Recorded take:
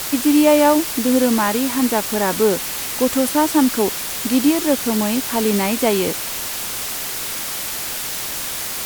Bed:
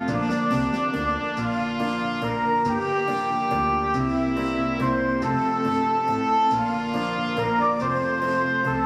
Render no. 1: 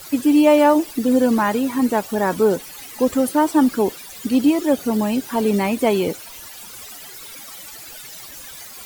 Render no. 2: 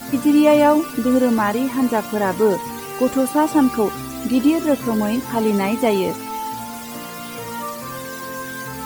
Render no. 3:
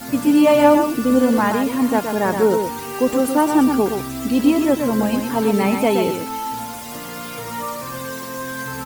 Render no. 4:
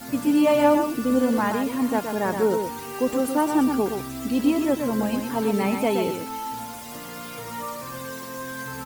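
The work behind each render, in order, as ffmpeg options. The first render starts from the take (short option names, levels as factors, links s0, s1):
-af "afftdn=nr=16:nf=-26"
-filter_complex "[1:a]volume=0.422[s0];[0:a][s0]amix=inputs=2:normalize=0"
-af "aecho=1:1:122:0.501"
-af "volume=0.531"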